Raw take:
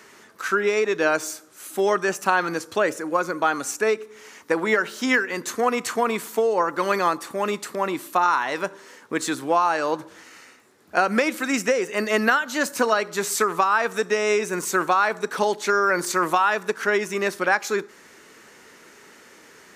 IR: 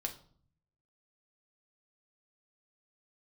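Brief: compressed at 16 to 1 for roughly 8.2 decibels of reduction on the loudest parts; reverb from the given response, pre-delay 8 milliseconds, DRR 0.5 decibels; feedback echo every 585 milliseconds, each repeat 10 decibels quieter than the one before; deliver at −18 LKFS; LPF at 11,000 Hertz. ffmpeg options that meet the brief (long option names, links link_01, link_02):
-filter_complex "[0:a]lowpass=11000,acompressor=threshold=-23dB:ratio=16,aecho=1:1:585|1170|1755|2340:0.316|0.101|0.0324|0.0104,asplit=2[link_01][link_02];[1:a]atrim=start_sample=2205,adelay=8[link_03];[link_02][link_03]afir=irnorm=-1:irlink=0,volume=-0.5dB[link_04];[link_01][link_04]amix=inputs=2:normalize=0,volume=8dB"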